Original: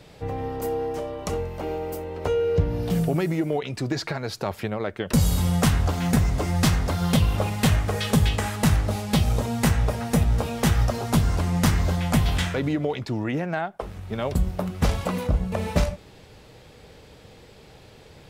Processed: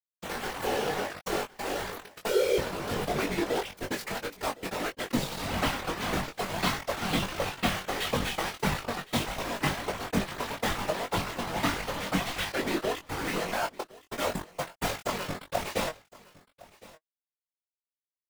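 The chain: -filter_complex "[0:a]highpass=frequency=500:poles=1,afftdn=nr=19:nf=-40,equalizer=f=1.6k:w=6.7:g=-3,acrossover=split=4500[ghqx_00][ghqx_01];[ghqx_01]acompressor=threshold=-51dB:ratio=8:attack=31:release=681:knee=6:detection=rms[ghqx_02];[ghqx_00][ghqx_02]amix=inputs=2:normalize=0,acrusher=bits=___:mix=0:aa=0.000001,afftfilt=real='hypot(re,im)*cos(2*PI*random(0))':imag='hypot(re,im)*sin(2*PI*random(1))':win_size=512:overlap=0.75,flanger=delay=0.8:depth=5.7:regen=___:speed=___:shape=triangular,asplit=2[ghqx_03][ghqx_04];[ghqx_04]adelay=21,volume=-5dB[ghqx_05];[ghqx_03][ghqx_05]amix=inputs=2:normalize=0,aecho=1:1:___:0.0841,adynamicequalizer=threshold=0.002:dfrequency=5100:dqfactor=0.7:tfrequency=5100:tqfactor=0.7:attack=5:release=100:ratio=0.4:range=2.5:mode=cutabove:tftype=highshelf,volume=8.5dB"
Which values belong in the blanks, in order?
4, 49, 1.6, 1062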